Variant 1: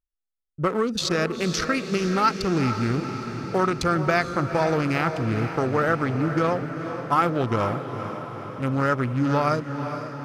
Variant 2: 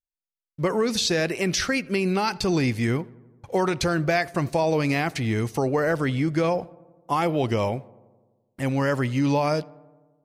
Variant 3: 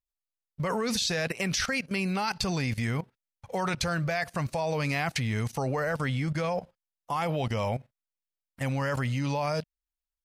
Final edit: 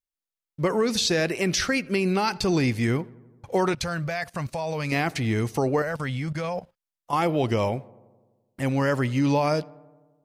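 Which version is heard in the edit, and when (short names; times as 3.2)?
2
3.74–4.92 from 3
5.82–7.13 from 3
not used: 1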